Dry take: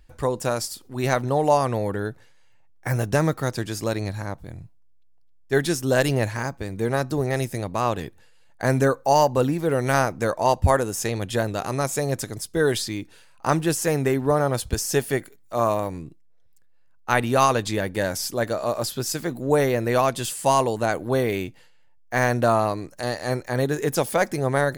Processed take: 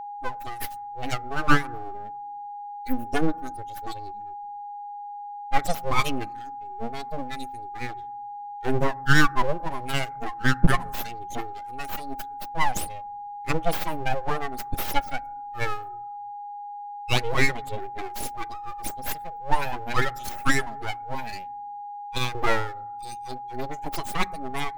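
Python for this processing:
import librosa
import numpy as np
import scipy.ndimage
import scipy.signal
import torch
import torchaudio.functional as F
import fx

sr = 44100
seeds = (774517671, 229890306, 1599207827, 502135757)

y = fx.bin_expand(x, sr, power=3.0)
y = fx.high_shelf(y, sr, hz=2400.0, db=-10.0, at=(17.35, 18.1))
y = fx.highpass(y, sr, hz=460.0, slope=6, at=(21.15, 22.35))
y = np.abs(y)
y = y + 10.0 ** (-41.0 / 20.0) * np.sin(2.0 * np.pi * 820.0 * np.arange(len(y)) / sr)
y = fx.rev_fdn(y, sr, rt60_s=0.93, lf_ratio=1.55, hf_ratio=0.3, size_ms=77.0, drr_db=20.0)
y = y * 10.0 ** (7.5 / 20.0)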